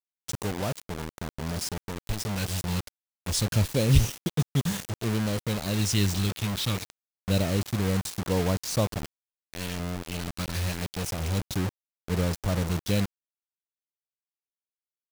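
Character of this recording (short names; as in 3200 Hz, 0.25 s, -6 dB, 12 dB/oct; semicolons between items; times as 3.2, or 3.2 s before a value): tremolo triangle 0.87 Hz, depth 35%; phasing stages 2, 0.27 Hz, lowest notch 670–2300 Hz; a quantiser's noise floor 6-bit, dither none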